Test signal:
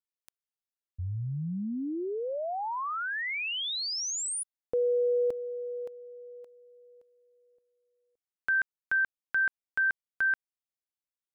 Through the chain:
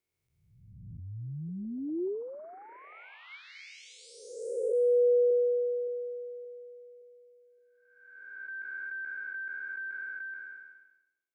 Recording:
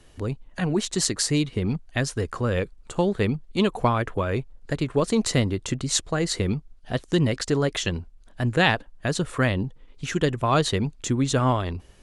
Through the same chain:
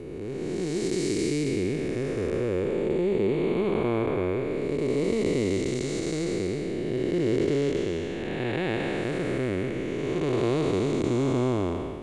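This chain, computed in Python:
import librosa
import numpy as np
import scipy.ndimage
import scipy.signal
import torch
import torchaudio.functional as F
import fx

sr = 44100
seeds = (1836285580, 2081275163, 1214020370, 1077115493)

y = fx.spec_blur(x, sr, span_ms=662.0)
y = fx.small_body(y, sr, hz=(370.0, 2200.0), ring_ms=20, db=14)
y = y * 10.0 ** (-2.5 / 20.0)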